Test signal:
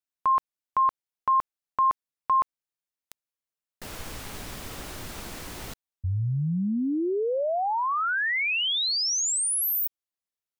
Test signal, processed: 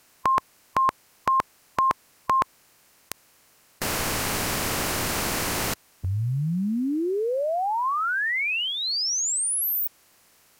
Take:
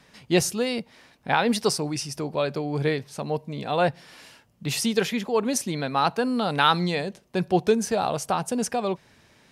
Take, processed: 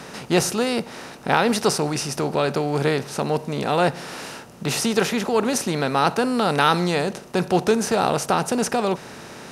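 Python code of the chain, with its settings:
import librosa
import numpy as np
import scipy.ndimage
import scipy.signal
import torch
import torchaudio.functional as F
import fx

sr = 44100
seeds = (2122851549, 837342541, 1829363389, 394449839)

y = fx.bin_compress(x, sr, power=0.6)
y = fx.peak_eq(y, sr, hz=3500.0, db=-4.5, octaves=0.33)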